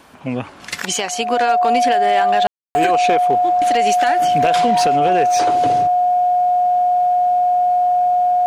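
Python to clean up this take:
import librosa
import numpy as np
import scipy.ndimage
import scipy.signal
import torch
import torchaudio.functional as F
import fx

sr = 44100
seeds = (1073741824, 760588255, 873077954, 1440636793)

y = fx.fix_declip(x, sr, threshold_db=-8.0)
y = fx.notch(y, sr, hz=720.0, q=30.0)
y = fx.fix_ambience(y, sr, seeds[0], print_start_s=0.0, print_end_s=0.5, start_s=2.47, end_s=2.75)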